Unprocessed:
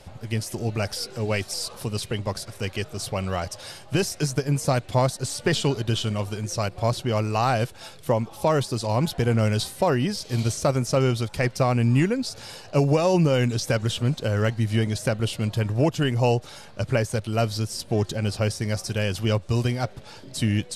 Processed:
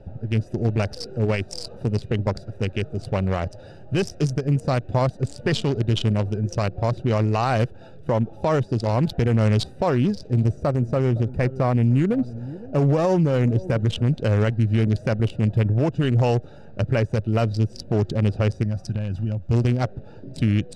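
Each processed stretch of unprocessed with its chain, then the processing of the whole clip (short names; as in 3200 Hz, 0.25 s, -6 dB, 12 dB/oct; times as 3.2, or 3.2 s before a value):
10.27–13.8 bell 3900 Hz -8 dB 2.1 oct + echo 0.513 s -19.5 dB
18.63–19.51 compressor 8:1, threshold -25 dBFS + bell 430 Hz -13.5 dB 0.57 oct
whole clip: Wiener smoothing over 41 samples; Bessel low-pass 7500 Hz, order 2; limiter -19 dBFS; gain +6.5 dB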